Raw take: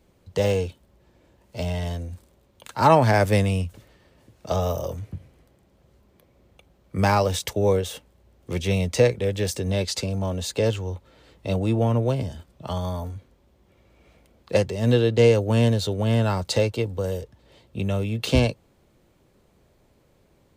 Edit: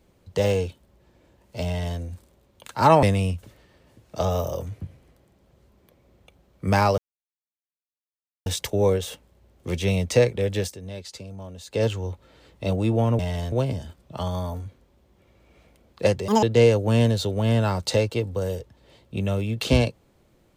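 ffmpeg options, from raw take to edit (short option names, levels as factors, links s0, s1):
-filter_complex "[0:a]asplit=9[s0][s1][s2][s3][s4][s5][s6][s7][s8];[s0]atrim=end=3.032[s9];[s1]atrim=start=3.338:end=7.29,asetpts=PTS-STARTPTS,afade=t=out:st=3.948:d=0.004:c=hsin,apad=pad_dur=1.48[s10];[s2]atrim=start=7.29:end=9.58,asetpts=PTS-STARTPTS,afade=t=in:d=0.004:c=hsin,afade=t=out:st=2.13:d=0.16:silence=0.251189[s11];[s3]atrim=start=9.58:end=10.5,asetpts=PTS-STARTPTS,volume=0.251[s12];[s4]atrim=start=10.5:end=12.022,asetpts=PTS-STARTPTS,afade=t=in:d=0.16:silence=0.251189[s13];[s5]atrim=start=1.668:end=2.002[s14];[s6]atrim=start=12.018:end=14.784[s15];[s7]atrim=start=14.78:end=15.05,asetpts=PTS-STARTPTS,asetrate=80703,aresample=44100[s16];[s8]atrim=start=15.046[s17];[s10][s11][s12][s13]concat=n=4:v=0:a=1[s18];[s9][s18]acrossfade=d=0.004:c1=hsin:c2=hsin[s19];[s19][s14]acrossfade=d=0.004:c1=hsin:c2=hsin[s20];[s20][s15]acrossfade=d=0.004:c1=hsin:c2=hsin[s21];[s21][s16]acrossfade=d=0.004:c1=hsin:c2=hsin[s22];[s22][s17]acrossfade=d=0.004:c1=hsin:c2=hsin"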